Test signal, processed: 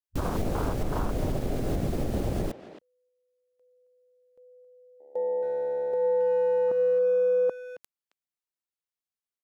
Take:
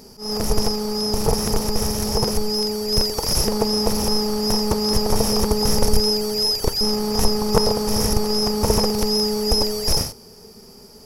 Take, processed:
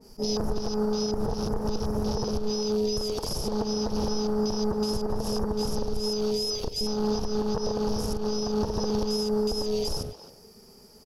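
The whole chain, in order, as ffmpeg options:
ffmpeg -i in.wav -filter_complex "[0:a]afwtdn=0.0355,acompressor=threshold=-30dB:ratio=5,alimiter=level_in=3dB:limit=-24dB:level=0:latency=1:release=115,volume=-3dB,asplit=2[link_01][link_02];[link_02]adelay=270,highpass=300,lowpass=3400,asoftclip=type=hard:threshold=-36.5dB,volume=-11dB[link_03];[link_01][link_03]amix=inputs=2:normalize=0,adynamicequalizer=threshold=0.00251:dfrequency=1800:dqfactor=0.7:tfrequency=1800:tqfactor=0.7:attack=5:release=100:ratio=0.375:range=2:mode=cutabove:tftype=highshelf,volume=8.5dB" out.wav

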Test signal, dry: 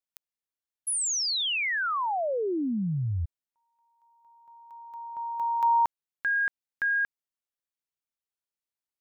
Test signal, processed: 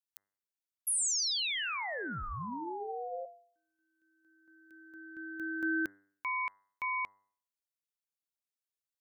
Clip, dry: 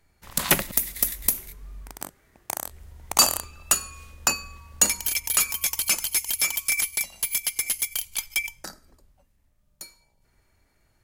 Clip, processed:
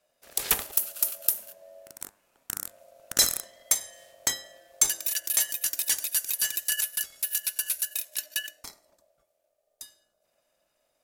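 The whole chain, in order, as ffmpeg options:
ffmpeg -i in.wav -af "highshelf=frequency=2600:gain=8.5,aeval=exprs='val(0)*sin(2*PI*610*n/s)':channel_layout=same,bandreject=frequency=99.06:width_type=h:width=4,bandreject=frequency=198.12:width_type=h:width=4,bandreject=frequency=297.18:width_type=h:width=4,bandreject=frequency=396.24:width_type=h:width=4,bandreject=frequency=495.3:width_type=h:width=4,bandreject=frequency=594.36:width_type=h:width=4,bandreject=frequency=693.42:width_type=h:width=4,bandreject=frequency=792.48:width_type=h:width=4,bandreject=frequency=891.54:width_type=h:width=4,bandreject=frequency=990.6:width_type=h:width=4,bandreject=frequency=1089.66:width_type=h:width=4,bandreject=frequency=1188.72:width_type=h:width=4,bandreject=frequency=1287.78:width_type=h:width=4,bandreject=frequency=1386.84:width_type=h:width=4,bandreject=frequency=1485.9:width_type=h:width=4,bandreject=frequency=1584.96:width_type=h:width=4,bandreject=frequency=1684.02:width_type=h:width=4,bandreject=frequency=1783.08:width_type=h:width=4,bandreject=frequency=1882.14:width_type=h:width=4,bandreject=frequency=1981.2:width_type=h:width=4,bandreject=frequency=2080.26:width_type=h:width=4,volume=-7.5dB" out.wav

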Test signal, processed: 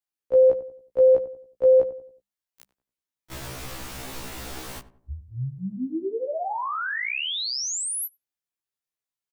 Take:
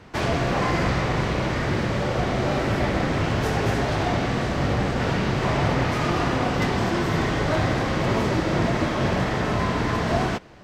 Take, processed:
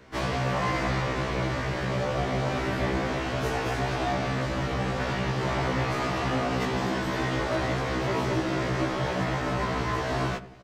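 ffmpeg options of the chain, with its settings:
ffmpeg -i in.wav -filter_complex "[0:a]bandreject=frequency=50:width_type=h:width=6,bandreject=frequency=100:width_type=h:width=6,bandreject=frequency=150:width_type=h:width=6,bandreject=frequency=200:width_type=h:width=6,acrossover=split=320|3000[link_01][link_02][link_03];[link_01]acompressor=threshold=-28dB:ratio=2[link_04];[link_04][link_02][link_03]amix=inputs=3:normalize=0,asplit=2[link_05][link_06];[link_06]adelay=92,lowpass=frequency=960:poles=1,volume=-13dB,asplit=2[link_07][link_08];[link_08]adelay=92,lowpass=frequency=960:poles=1,volume=0.43,asplit=2[link_09][link_10];[link_10]adelay=92,lowpass=frequency=960:poles=1,volume=0.43,asplit=2[link_11][link_12];[link_12]adelay=92,lowpass=frequency=960:poles=1,volume=0.43[link_13];[link_05][link_07][link_09][link_11][link_13]amix=inputs=5:normalize=0,afftfilt=real='re*1.73*eq(mod(b,3),0)':imag='im*1.73*eq(mod(b,3),0)':win_size=2048:overlap=0.75,volume=-1.5dB" out.wav

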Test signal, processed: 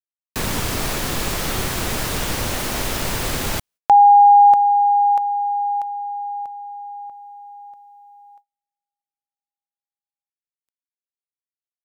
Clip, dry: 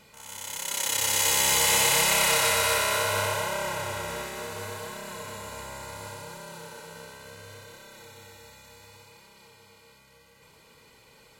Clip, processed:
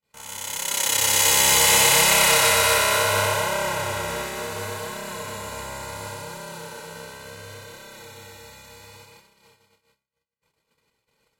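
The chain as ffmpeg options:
ffmpeg -i in.wav -af "agate=range=-43dB:threshold=-52dB:ratio=16:detection=peak,volume=5.5dB" out.wav

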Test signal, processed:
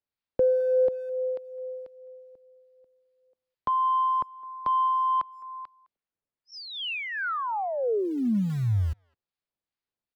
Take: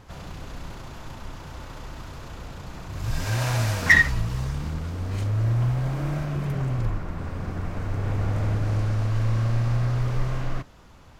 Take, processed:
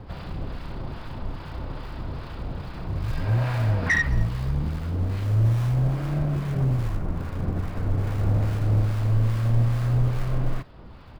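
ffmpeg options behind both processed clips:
ffmpeg -i in.wav -filter_complex "[0:a]acrossover=split=2900[link_01][link_02];[link_02]acompressor=threshold=-43dB:ratio=4:attack=1:release=60[link_03];[link_01][link_03]amix=inputs=2:normalize=0,aresample=11025,aresample=44100,asplit=2[link_04][link_05];[link_05]acompressor=threshold=-37dB:ratio=10,volume=0dB[link_06];[link_04][link_06]amix=inputs=2:normalize=0,asoftclip=type=tanh:threshold=-12dB,acrossover=split=220[link_07][link_08];[link_07]acrusher=bits=4:mode=log:mix=0:aa=0.000001[link_09];[link_09][link_08]amix=inputs=2:normalize=0,acrossover=split=940[link_10][link_11];[link_10]aeval=exprs='val(0)*(1-0.5/2+0.5/2*cos(2*PI*2.4*n/s))':channel_layout=same[link_12];[link_11]aeval=exprs='val(0)*(1-0.5/2-0.5/2*cos(2*PI*2.4*n/s))':channel_layout=same[link_13];[link_12][link_13]amix=inputs=2:normalize=0,tiltshelf=frequency=800:gain=3.5,asplit=2[link_14][link_15];[link_15]adelay=210,highpass=300,lowpass=3400,asoftclip=type=hard:threshold=-20.5dB,volume=-22dB[link_16];[link_14][link_16]amix=inputs=2:normalize=0" out.wav

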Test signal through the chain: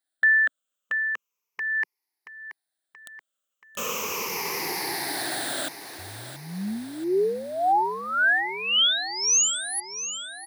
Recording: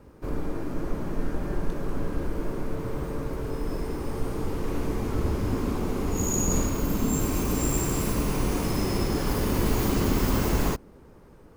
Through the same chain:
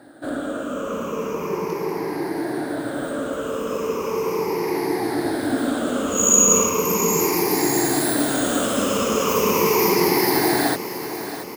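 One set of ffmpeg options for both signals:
ffmpeg -i in.wav -filter_complex "[0:a]afftfilt=real='re*pow(10,17/40*sin(2*PI*(0.8*log(max(b,1)*sr/1024/100)/log(2)-(-0.37)*(pts-256)/sr)))':imag='im*pow(10,17/40*sin(2*PI*(0.8*log(max(b,1)*sr/1024/100)/log(2)-(-0.37)*(pts-256)/sr)))':win_size=1024:overlap=0.75,highpass=310,asplit=2[link_01][link_02];[link_02]aecho=0:1:679|1358|2037|2716|3395|4074:0.251|0.141|0.0788|0.0441|0.0247|0.0138[link_03];[link_01][link_03]amix=inputs=2:normalize=0,volume=7dB" out.wav

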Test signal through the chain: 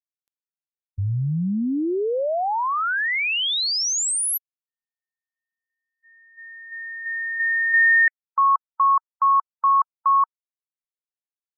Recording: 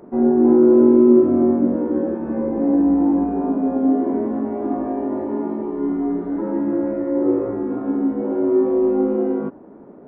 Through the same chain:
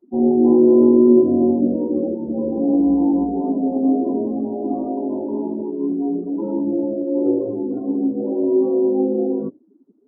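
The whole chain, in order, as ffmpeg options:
ffmpeg -i in.wav -af "afftdn=noise_reduction=34:noise_floor=-26" out.wav

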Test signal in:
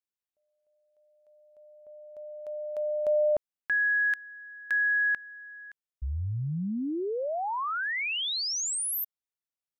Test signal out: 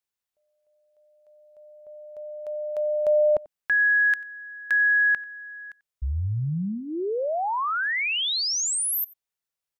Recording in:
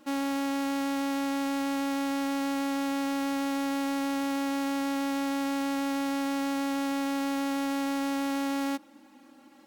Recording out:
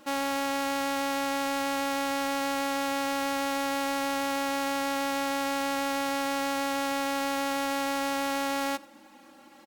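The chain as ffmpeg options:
ffmpeg -i in.wav -filter_complex "[0:a]equalizer=frequency=270:width=3.8:gain=-10.5,asplit=2[link_01][link_02];[link_02]aecho=0:1:91:0.0708[link_03];[link_01][link_03]amix=inputs=2:normalize=0,volume=5dB" out.wav

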